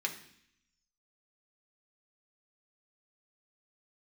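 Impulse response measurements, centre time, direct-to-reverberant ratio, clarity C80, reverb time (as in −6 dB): 13 ms, 1.0 dB, 13.5 dB, 0.65 s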